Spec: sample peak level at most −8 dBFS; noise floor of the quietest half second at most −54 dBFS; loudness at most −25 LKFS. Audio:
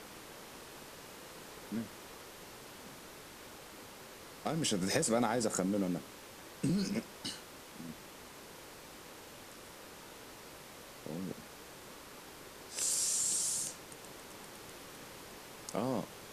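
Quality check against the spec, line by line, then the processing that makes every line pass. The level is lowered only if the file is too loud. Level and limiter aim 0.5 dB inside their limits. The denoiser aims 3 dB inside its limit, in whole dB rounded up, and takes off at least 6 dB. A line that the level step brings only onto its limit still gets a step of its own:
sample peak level −17.5 dBFS: in spec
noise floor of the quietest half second −52 dBFS: out of spec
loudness −35.5 LKFS: in spec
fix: broadband denoise 6 dB, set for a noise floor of −52 dBFS

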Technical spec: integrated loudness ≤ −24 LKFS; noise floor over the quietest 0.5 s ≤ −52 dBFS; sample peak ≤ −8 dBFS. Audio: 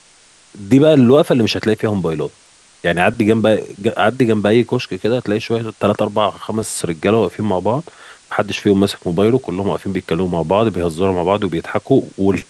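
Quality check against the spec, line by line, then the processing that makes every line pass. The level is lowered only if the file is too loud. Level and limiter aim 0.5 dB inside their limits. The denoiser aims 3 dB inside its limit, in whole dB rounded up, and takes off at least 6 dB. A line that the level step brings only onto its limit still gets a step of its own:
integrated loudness −16.5 LKFS: out of spec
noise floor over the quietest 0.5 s −49 dBFS: out of spec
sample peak −1.5 dBFS: out of spec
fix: level −8 dB

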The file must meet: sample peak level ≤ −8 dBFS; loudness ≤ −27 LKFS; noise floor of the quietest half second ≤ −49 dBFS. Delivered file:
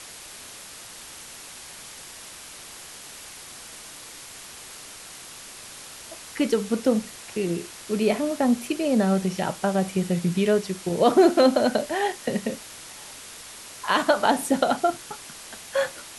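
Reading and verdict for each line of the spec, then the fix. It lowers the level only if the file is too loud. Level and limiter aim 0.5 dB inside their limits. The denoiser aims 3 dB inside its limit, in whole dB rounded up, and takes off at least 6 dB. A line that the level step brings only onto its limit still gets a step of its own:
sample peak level −5.0 dBFS: out of spec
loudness −23.5 LKFS: out of spec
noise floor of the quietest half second −42 dBFS: out of spec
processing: broadband denoise 6 dB, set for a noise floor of −42 dBFS
level −4 dB

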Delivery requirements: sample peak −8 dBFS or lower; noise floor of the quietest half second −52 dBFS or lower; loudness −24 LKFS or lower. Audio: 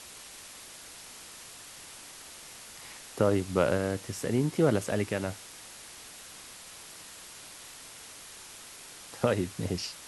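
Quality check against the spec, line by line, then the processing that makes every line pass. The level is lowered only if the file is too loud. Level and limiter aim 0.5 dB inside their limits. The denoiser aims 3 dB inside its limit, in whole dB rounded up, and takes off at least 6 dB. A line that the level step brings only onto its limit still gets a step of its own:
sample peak −9.5 dBFS: in spec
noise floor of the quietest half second −48 dBFS: out of spec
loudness −29.5 LKFS: in spec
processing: broadband denoise 7 dB, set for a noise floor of −48 dBFS

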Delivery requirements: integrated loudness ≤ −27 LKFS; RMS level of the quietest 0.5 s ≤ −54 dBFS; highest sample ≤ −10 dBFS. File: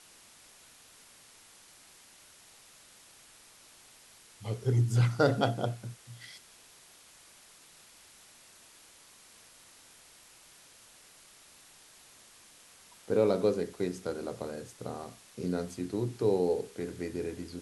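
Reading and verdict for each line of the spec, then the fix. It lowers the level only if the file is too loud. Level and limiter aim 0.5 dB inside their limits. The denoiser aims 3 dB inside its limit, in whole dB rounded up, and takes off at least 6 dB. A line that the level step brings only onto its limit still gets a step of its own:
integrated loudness −31.5 LKFS: in spec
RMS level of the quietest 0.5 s −57 dBFS: in spec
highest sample −11.5 dBFS: in spec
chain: no processing needed

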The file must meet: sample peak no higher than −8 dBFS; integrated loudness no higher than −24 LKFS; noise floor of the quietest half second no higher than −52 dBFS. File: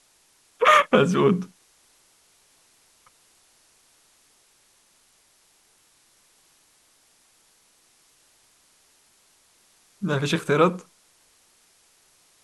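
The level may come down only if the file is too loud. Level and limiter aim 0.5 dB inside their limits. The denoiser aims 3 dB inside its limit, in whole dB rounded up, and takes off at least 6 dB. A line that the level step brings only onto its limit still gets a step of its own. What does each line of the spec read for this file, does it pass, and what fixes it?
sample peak −3.5 dBFS: out of spec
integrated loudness −20.5 LKFS: out of spec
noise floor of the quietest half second −62 dBFS: in spec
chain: level −4 dB
brickwall limiter −8.5 dBFS

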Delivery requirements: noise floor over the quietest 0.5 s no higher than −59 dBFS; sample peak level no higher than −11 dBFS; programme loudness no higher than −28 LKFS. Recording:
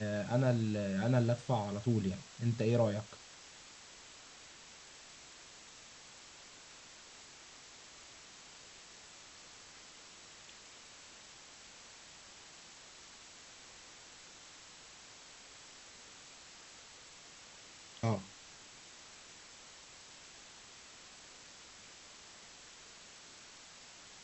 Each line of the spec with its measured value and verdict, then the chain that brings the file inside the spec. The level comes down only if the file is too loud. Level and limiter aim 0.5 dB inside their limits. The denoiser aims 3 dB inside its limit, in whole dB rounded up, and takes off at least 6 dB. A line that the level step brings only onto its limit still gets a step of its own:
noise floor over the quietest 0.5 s −56 dBFS: out of spec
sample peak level −17.0 dBFS: in spec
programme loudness −34.5 LKFS: in spec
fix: broadband denoise 6 dB, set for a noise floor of −56 dBFS

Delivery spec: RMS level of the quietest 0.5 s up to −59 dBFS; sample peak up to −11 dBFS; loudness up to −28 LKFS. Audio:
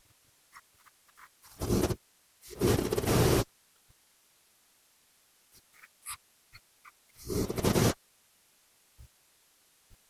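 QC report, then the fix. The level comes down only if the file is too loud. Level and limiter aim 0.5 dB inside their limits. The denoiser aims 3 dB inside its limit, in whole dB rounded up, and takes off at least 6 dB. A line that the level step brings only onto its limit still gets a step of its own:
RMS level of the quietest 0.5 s −67 dBFS: in spec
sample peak −12.0 dBFS: in spec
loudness −30.0 LKFS: in spec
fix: no processing needed

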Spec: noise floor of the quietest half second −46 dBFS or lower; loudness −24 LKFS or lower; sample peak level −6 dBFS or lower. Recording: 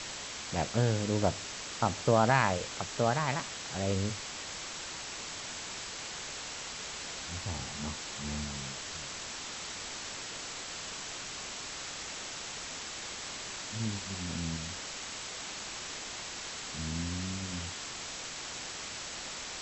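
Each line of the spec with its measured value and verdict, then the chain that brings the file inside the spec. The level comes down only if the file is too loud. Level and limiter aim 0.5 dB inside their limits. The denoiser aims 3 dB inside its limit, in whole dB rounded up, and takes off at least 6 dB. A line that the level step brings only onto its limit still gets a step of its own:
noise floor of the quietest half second −41 dBFS: out of spec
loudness −35.0 LKFS: in spec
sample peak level −10.0 dBFS: in spec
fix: broadband denoise 8 dB, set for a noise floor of −41 dBFS

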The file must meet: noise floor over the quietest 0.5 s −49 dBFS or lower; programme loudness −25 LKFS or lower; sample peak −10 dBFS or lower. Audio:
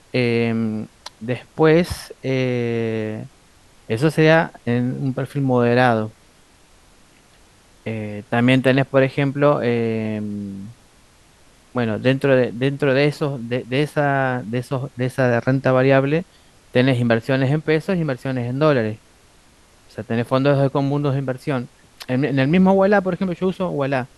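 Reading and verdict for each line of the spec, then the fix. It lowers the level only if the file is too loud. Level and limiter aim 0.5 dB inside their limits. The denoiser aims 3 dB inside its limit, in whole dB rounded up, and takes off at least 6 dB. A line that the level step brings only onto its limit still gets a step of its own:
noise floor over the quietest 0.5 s −52 dBFS: in spec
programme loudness −19.5 LKFS: out of spec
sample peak −2.0 dBFS: out of spec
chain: level −6 dB
brickwall limiter −10.5 dBFS

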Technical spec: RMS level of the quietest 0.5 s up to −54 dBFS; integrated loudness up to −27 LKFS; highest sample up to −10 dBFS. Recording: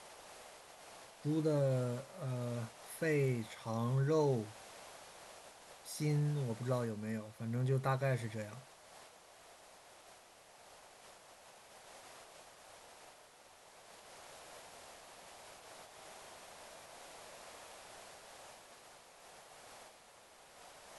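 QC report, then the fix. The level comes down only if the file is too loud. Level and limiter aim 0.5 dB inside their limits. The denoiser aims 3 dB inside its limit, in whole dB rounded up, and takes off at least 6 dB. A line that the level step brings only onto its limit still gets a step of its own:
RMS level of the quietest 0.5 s −61 dBFS: in spec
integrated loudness −37.0 LKFS: in spec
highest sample −21.0 dBFS: in spec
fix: no processing needed

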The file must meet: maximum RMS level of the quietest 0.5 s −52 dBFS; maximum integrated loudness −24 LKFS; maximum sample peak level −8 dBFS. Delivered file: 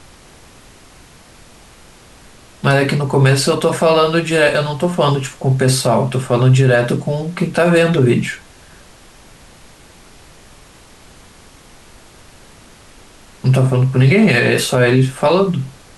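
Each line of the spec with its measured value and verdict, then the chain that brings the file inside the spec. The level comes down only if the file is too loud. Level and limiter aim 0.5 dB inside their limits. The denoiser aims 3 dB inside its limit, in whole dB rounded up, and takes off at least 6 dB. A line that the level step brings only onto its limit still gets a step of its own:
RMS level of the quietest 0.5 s −43 dBFS: out of spec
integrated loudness −14.5 LKFS: out of spec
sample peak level −3.0 dBFS: out of spec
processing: level −10 dB

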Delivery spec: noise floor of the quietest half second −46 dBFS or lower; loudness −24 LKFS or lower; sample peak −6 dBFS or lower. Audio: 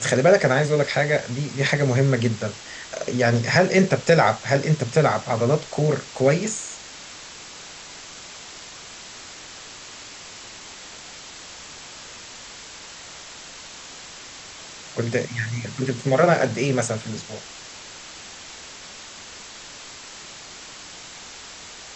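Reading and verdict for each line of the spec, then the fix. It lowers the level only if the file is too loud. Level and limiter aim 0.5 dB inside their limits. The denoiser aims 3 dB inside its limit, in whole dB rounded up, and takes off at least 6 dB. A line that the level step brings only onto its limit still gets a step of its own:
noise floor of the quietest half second −41 dBFS: out of spec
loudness −21.5 LKFS: out of spec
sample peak −4.0 dBFS: out of spec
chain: broadband denoise 6 dB, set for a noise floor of −41 dBFS
level −3 dB

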